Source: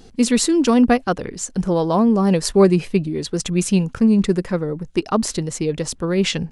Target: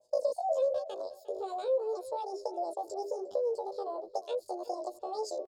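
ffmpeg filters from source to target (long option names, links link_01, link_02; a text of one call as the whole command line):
ffmpeg -i in.wav -filter_complex "[0:a]bandreject=frequency=60:width_type=h:width=6,bandreject=frequency=120:width_type=h:width=6,bandreject=frequency=180:width_type=h:width=6,afwtdn=0.112,equalizer=frequency=500:width_type=o:width=1:gain=-7,equalizer=frequency=1000:width_type=o:width=1:gain=-3,equalizer=frequency=2000:width_type=o:width=1:gain=10,equalizer=frequency=4000:width_type=o:width=1:gain=6,acrossover=split=170|6100[link_01][link_02][link_03];[link_01]acompressor=threshold=-37dB:ratio=4[link_04];[link_02]acompressor=threshold=-25dB:ratio=4[link_05];[link_03]acompressor=threshold=-55dB:ratio=4[link_06];[link_04][link_05][link_06]amix=inputs=3:normalize=0,asplit=3[link_07][link_08][link_09];[link_07]bandpass=frequency=270:width_type=q:width=8,volume=0dB[link_10];[link_08]bandpass=frequency=2290:width_type=q:width=8,volume=-6dB[link_11];[link_09]bandpass=frequency=3010:width_type=q:width=8,volume=-9dB[link_12];[link_10][link_11][link_12]amix=inputs=3:normalize=0,flanger=delay=18:depth=5.9:speed=0.36,asetrate=83250,aresample=44100,atempo=0.529732,asplit=2[link_13][link_14];[link_14]acompressor=threshold=-44dB:ratio=6,volume=-2dB[link_15];[link_13][link_15]amix=inputs=2:normalize=0,asetrate=52479,aresample=44100,asplit=2[link_16][link_17];[link_17]adelay=354,lowpass=frequency=2200:poles=1,volume=-16dB,asplit=2[link_18][link_19];[link_19]adelay=354,lowpass=frequency=2200:poles=1,volume=0.23[link_20];[link_18][link_20]amix=inputs=2:normalize=0[link_21];[link_16][link_21]amix=inputs=2:normalize=0,adynamicequalizer=threshold=0.00251:dfrequency=2200:dqfactor=0.7:tfrequency=2200:tqfactor=0.7:attack=5:release=100:ratio=0.375:range=3:mode=cutabove:tftype=highshelf,volume=4.5dB" out.wav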